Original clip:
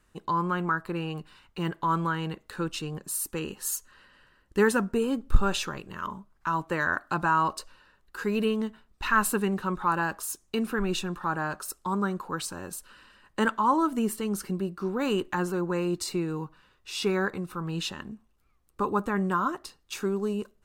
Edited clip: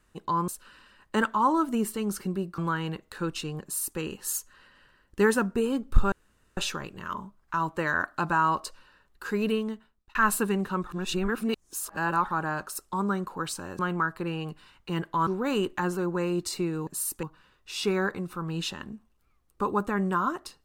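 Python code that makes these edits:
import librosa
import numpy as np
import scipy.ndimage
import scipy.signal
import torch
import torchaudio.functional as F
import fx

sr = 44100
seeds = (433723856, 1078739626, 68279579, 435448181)

y = fx.edit(x, sr, fx.swap(start_s=0.48, length_s=1.48, other_s=12.72, other_length_s=2.1),
    fx.duplicate(start_s=3.01, length_s=0.36, to_s=16.42),
    fx.insert_room_tone(at_s=5.5, length_s=0.45),
    fx.fade_out_span(start_s=8.4, length_s=0.68),
    fx.reverse_span(start_s=9.8, length_s=1.41), tone=tone)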